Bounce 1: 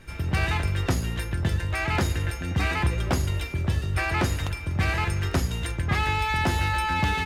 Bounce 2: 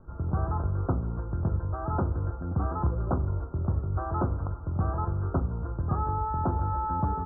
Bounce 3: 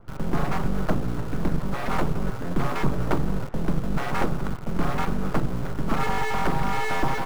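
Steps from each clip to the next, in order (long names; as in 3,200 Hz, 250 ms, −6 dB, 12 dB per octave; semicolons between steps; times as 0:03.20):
Butterworth low-pass 1,400 Hz 96 dB per octave; level −2.5 dB
full-wave rectification; in parallel at −9.5 dB: bit-depth reduction 6 bits, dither none; on the sum: level +4 dB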